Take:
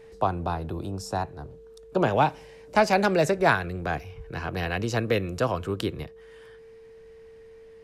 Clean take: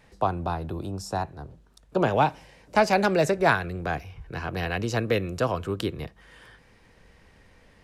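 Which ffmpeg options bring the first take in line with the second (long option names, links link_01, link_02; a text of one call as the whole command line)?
ffmpeg -i in.wav -af "bandreject=frequency=450:width=30,asetnsamples=nb_out_samples=441:pad=0,asendcmd='6.03 volume volume 4dB',volume=0dB" out.wav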